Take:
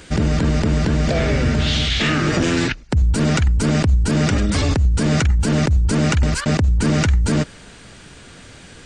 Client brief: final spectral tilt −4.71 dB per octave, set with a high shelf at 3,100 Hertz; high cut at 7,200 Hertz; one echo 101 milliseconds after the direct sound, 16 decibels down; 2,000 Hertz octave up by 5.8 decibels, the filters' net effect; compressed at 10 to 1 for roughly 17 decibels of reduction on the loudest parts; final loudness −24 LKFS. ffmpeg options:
ffmpeg -i in.wav -af "lowpass=7200,equalizer=frequency=2000:width_type=o:gain=5.5,highshelf=frequency=3100:gain=5,acompressor=threshold=-30dB:ratio=10,aecho=1:1:101:0.158,volume=9.5dB" out.wav

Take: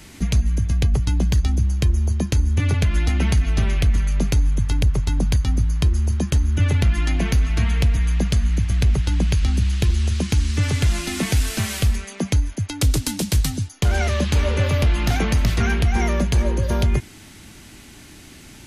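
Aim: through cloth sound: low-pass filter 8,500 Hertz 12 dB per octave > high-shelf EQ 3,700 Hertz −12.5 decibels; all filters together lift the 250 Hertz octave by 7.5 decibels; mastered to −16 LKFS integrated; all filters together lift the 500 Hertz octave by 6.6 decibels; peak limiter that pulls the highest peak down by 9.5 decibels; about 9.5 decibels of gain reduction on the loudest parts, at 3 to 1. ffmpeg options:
ffmpeg -i in.wav -af "equalizer=frequency=250:width_type=o:gain=8.5,equalizer=frequency=500:width_type=o:gain=6,acompressor=threshold=-25dB:ratio=3,alimiter=limit=-20.5dB:level=0:latency=1,lowpass=8500,highshelf=frequency=3700:gain=-12.5,volume=13.5dB" out.wav

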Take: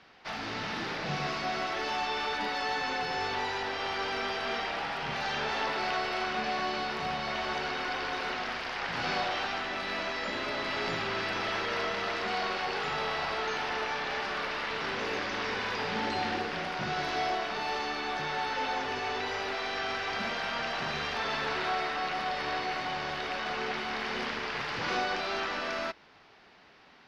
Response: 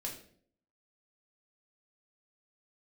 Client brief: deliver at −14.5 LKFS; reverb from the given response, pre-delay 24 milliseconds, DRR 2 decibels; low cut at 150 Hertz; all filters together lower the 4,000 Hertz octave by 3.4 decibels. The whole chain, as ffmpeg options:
-filter_complex "[0:a]highpass=150,equalizer=frequency=4000:width_type=o:gain=-4.5,asplit=2[link_01][link_02];[1:a]atrim=start_sample=2205,adelay=24[link_03];[link_02][link_03]afir=irnorm=-1:irlink=0,volume=-1.5dB[link_04];[link_01][link_04]amix=inputs=2:normalize=0,volume=16.5dB"

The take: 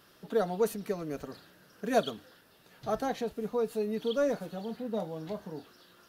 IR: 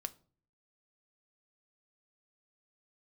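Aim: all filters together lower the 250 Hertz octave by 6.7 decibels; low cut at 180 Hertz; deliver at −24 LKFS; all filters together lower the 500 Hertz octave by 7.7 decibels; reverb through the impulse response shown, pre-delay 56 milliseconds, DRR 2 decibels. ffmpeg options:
-filter_complex "[0:a]highpass=180,equalizer=frequency=250:width_type=o:gain=-4.5,equalizer=frequency=500:width_type=o:gain=-8,asplit=2[link_01][link_02];[1:a]atrim=start_sample=2205,adelay=56[link_03];[link_02][link_03]afir=irnorm=-1:irlink=0,volume=0dB[link_04];[link_01][link_04]amix=inputs=2:normalize=0,volume=13dB"

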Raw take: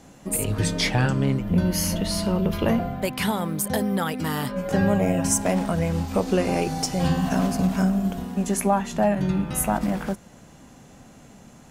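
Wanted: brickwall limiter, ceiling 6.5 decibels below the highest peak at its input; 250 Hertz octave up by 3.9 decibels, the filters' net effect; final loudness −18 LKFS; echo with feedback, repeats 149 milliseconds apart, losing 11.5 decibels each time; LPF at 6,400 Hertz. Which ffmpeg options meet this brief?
ffmpeg -i in.wav -af "lowpass=6400,equalizer=frequency=250:width_type=o:gain=5.5,alimiter=limit=-14dB:level=0:latency=1,aecho=1:1:149|298|447:0.266|0.0718|0.0194,volume=5.5dB" out.wav

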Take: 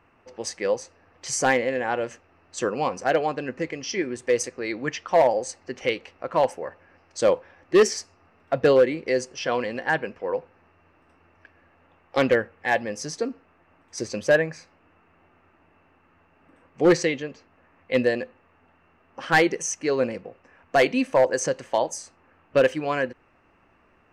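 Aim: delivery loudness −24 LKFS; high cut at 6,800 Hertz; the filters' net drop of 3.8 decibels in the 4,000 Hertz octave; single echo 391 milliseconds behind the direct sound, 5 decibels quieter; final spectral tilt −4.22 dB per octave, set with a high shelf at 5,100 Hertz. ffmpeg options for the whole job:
ffmpeg -i in.wav -af "lowpass=6800,equalizer=frequency=4000:width_type=o:gain=-9,highshelf=frequency=5100:gain=8,aecho=1:1:391:0.562" out.wav

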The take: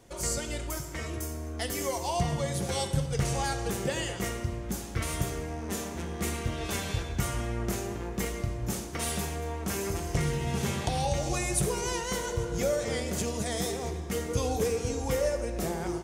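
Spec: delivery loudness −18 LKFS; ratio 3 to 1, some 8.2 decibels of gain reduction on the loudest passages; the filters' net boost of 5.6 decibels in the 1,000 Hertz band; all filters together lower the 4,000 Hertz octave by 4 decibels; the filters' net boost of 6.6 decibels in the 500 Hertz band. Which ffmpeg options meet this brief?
ffmpeg -i in.wav -af "equalizer=frequency=500:width_type=o:gain=6.5,equalizer=frequency=1000:width_type=o:gain=5,equalizer=frequency=4000:width_type=o:gain=-6,acompressor=threshold=-29dB:ratio=3,volume=14.5dB" out.wav

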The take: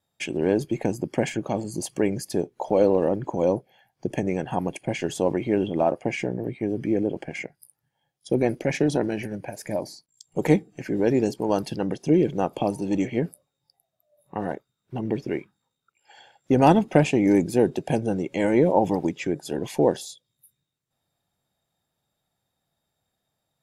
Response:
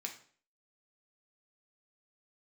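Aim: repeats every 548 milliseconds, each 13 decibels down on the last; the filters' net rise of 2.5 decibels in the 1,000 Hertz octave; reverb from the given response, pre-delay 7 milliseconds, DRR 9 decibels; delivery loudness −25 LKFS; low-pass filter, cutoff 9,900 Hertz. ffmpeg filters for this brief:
-filter_complex "[0:a]lowpass=9900,equalizer=frequency=1000:width_type=o:gain=3.5,aecho=1:1:548|1096|1644:0.224|0.0493|0.0108,asplit=2[link_01][link_02];[1:a]atrim=start_sample=2205,adelay=7[link_03];[link_02][link_03]afir=irnorm=-1:irlink=0,volume=-8dB[link_04];[link_01][link_04]amix=inputs=2:normalize=0,volume=-1.5dB"

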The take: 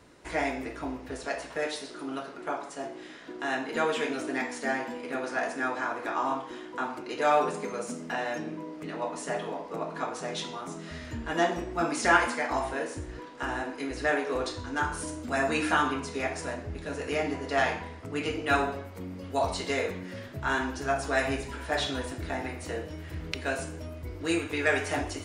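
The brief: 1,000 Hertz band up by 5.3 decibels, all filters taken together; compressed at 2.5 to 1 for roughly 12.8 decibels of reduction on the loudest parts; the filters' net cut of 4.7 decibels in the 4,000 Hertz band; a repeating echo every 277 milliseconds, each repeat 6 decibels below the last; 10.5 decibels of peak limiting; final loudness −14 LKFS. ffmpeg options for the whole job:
ffmpeg -i in.wav -af "equalizer=frequency=1000:width_type=o:gain=7.5,equalizer=frequency=4000:width_type=o:gain=-7,acompressor=threshold=-34dB:ratio=2.5,alimiter=level_in=4.5dB:limit=-24dB:level=0:latency=1,volume=-4.5dB,aecho=1:1:277|554|831|1108|1385|1662:0.501|0.251|0.125|0.0626|0.0313|0.0157,volume=23.5dB" out.wav

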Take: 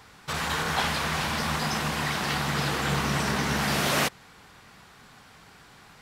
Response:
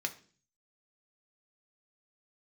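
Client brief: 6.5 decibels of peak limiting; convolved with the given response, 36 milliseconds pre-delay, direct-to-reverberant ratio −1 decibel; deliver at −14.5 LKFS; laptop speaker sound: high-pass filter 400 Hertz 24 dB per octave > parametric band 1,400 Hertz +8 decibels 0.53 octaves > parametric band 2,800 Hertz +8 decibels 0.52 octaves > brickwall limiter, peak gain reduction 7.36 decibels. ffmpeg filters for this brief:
-filter_complex "[0:a]alimiter=limit=-18.5dB:level=0:latency=1,asplit=2[link_01][link_02];[1:a]atrim=start_sample=2205,adelay=36[link_03];[link_02][link_03]afir=irnorm=-1:irlink=0,volume=-1.5dB[link_04];[link_01][link_04]amix=inputs=2:normalize=0,highpass=frequency=400:width=0.5412,highpass=frequency=400:width=1.3066,equalizer=frequency=1400:width_type=o:width=0.53:gain=8,equalizer=frequency=2800:width_type=o:width=0.52:gain=8,volume=10dB,alimiter=limit=-7dB:level=0:latency=1"

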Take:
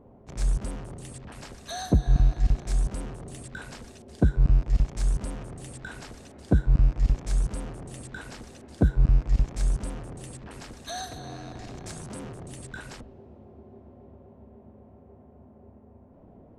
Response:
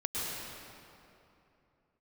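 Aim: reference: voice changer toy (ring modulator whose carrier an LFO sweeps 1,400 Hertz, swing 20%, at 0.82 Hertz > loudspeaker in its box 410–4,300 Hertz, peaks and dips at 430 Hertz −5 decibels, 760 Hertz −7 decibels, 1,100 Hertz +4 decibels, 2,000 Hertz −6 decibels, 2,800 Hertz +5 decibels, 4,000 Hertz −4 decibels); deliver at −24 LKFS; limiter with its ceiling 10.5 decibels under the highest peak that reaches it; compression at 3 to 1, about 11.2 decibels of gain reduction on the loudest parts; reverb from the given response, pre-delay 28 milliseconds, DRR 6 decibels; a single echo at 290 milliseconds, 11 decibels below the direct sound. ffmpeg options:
-filter_complex "[0:a]acompressor=threshold=-30dB:ratio=3,alimiter=level_in=3.5dB:limit=-24dB:level=0:latency=1,volume=-3.5dB,aecho=1:1:290:0.282,asplit=2[link_01][link_02];[1:a]atrim=start_sample=2205,adelay=28[link_03];[link_02][link_03]afir=irnorm=-1:irlink=0,volume=-12dB[link_04];[link_01][link_04]amix=inputs=2:normalize=0,aeval=exprs='val(0)*sin(2*PI*1400*n/s+1400*0.2/0.82*sin(2*PI*0.82*n/s))':channel_layout=same,highpass=410,equalizer=frequency=430:width_type=q:width=4:gain=-5,equalizer=frequency=760:width_type=q:width=4:gain=-7,equalizer=frequency=1100:width_type=q:width=4:gain=4,equalizer=frequency=2000:width_type=q:width=4:gain=-6,equalizer=frequency=2800:width_type=q:width=4:gain=5,equalizer=frequency=4000:width_type=q:width=4:gain=-4,lowpass=frequency=4300:width=0.5412,lowpass=frequency=4300:width=1.3066,volume=12.5dB"

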